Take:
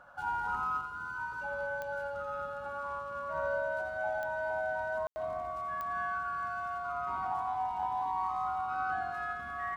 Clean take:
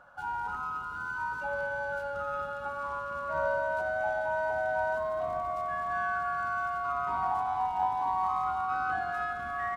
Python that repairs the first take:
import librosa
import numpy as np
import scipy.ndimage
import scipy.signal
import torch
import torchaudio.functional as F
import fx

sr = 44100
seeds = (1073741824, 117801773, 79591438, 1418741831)

y = fx.fix_declick_ar(x, sr, threshold=10.0)
y = fx.fix_ambience(y, sr, seeds[0], print_start_s=0.0, print_end_s=0.5, start_s=5.07, end_s=5.16)
y = fx.fix_echo_inverse(y, sr, delay_ms=85, level_db=-7.0)
y = fx.fix_level(y, sr, at_s=0.81, step_db=5.0)